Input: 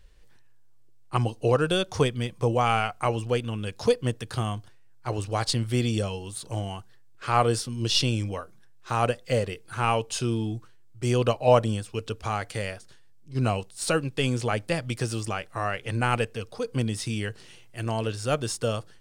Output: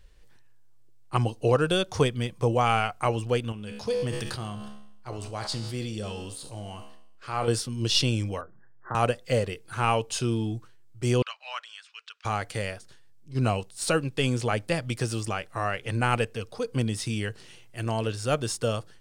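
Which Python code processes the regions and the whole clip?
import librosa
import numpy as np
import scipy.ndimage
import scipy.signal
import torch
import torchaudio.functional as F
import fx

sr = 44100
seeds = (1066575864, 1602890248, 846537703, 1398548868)

y = fx.chain(x, sr, fx.peak_eq(hz=4700.0, db=4.5, octaves=0.28),
    fx.comb_fb(f0_hz=70.0, decay_s=0.92, harmonics='all', damping=0.0, mix_pct=70),
    fx.sustainer(db_per_s=22.0), at=(3.52, 7.48))
y = fx.chain(y, sr, fx.brickwall_lowpass(high_hz=2000.0),
    fx.band_squash(depth_pct=40), at=(8.41, 8.95))
y = fx.chain(y, sr, fx.highpass(hz=1400.0, slope=24),
    fx.air_absorb(metres=140.0), at=(11.22, 12.25))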